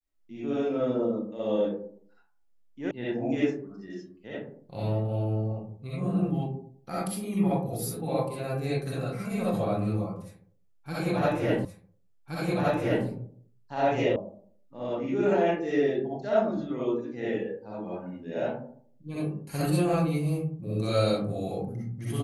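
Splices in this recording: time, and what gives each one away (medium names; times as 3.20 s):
2.91 s: sound stops dead
11.65 s: repeat of the last 1.42 s
14.16 s: sound stops dead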